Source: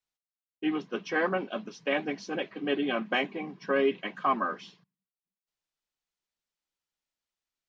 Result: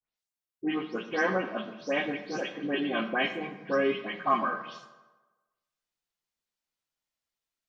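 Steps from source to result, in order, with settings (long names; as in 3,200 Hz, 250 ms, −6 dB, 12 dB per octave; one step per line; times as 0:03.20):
every frequency bin delayed by itself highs late, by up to 167 ms
on a send: convolution reverb RT60 1.2 s, pre-delay 4 ms, DRR 6 dB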